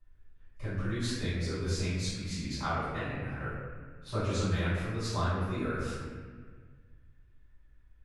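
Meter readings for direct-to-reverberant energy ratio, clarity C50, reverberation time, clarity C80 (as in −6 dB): −16.0 dB, −2.5 dB, 1.6 s, 0.5 dB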